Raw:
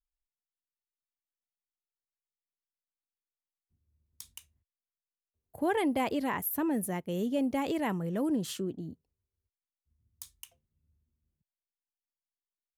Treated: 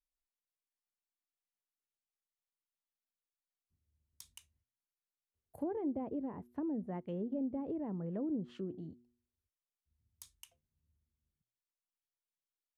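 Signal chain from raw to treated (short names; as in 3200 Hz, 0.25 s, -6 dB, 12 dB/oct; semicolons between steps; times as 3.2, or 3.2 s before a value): de-hum 120.6 Hz, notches 3; treble ducked by the level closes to 480 Hz, closed at -27.5 dBFS; gain -6 dB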